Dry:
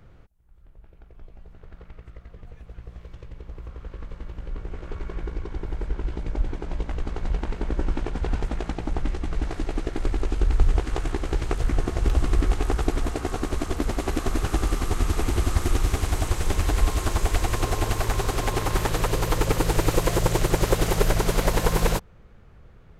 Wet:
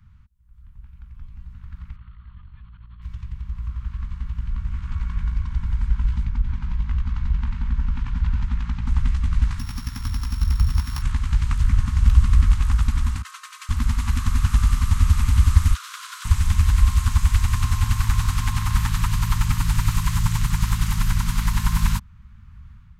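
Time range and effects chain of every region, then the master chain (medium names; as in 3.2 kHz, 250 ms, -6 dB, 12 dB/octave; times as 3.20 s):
1.96–3.02 s: compressor with a negative ratio -43 dBFS + rippled Chebyshev low-pass 4.4 kHz, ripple 6 dB
6.25–8.87 s: compression 2:1, threshold -25 dBFS + distance through air 88 m
9.59–11.02 s: sorted samples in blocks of 8 samples + high-pass 94 Hz 6 dB/octave
13.22–13.69 s: elliptic high-pass 1.1 kHz, stop band 70 dB + comb 3.9 ms, depth 69% + expander -36 dBFS
15.74–16.25 s: rippled Chebyshev high-pass 990 Hz, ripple 6 dB + peaking EQ 1.4 kHz +4 dB 0.75 oct
whole clip: level rider gain up to 7.5 dB; elliptic band-stop 230–980 Hz, stop band 40 dB; peaking EQ 73 Hz +10 dB 1.6 oct; trim -5.5 dB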